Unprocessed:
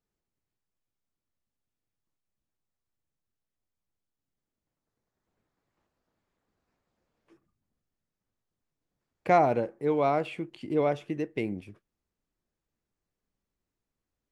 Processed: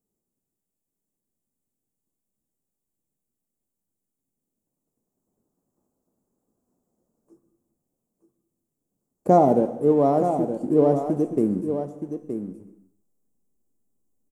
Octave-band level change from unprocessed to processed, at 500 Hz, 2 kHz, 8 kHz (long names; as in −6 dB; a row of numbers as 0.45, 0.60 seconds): +7.5 dB, below −10 dB, can't be measured